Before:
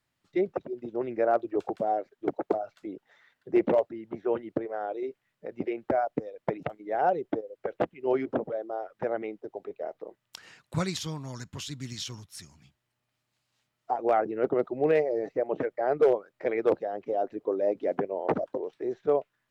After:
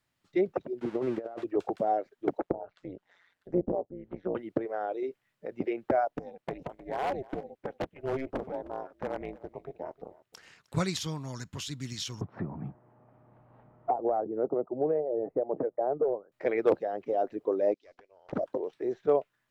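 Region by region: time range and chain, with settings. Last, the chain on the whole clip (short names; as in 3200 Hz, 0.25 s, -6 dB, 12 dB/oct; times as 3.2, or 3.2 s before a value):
0.81–1.44 switching spikes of -24 dBFS + LPF 1400 Hz + negative-ratio compressor -31 dBFS, ratio -0.5
2.41–4.35 treble ducked by the level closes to 480 Hz, closed at -24.5 dBFS + AM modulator 180 Hz, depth 75%
6.08–10.77 AM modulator 270 Hz, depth 75% + hard clip -25.5 dBFS + echo 0.308 s -20 dB
12.21–16.32 ladder low-pass 1100 Hz, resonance 20% + three-band squash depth 100%
17.74–18.33 band-pass 5100 Hz, Q 1.9 + tube stage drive 36 dB, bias 0.6
whole clip: dry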